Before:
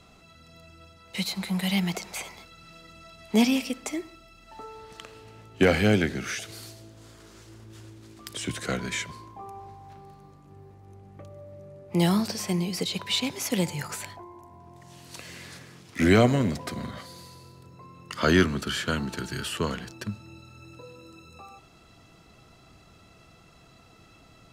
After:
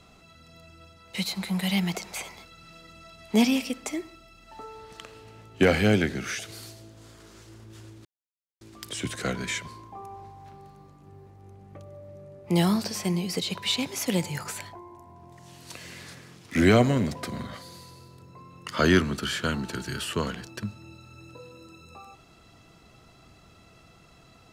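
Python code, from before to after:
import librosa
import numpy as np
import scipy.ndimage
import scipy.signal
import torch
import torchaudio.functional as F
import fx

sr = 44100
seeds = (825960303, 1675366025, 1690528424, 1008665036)

y = fx.edit(x, sr, fx.insert_silence(at_s=8.05, length_s=0.56), tone=tone)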